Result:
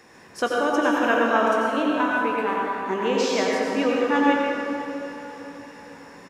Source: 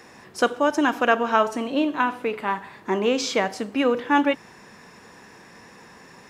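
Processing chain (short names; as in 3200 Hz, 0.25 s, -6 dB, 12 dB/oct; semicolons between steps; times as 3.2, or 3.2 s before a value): doubler 18 ms -11 dB; on a send: diffused feedback echo 0.51 s, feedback 52%, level -14.5 dB; on the sum: plate-style reverb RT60 2.4 s, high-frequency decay 0.45×, pre-delay 75 ms, DRR -3 dB; gain -4.5 dB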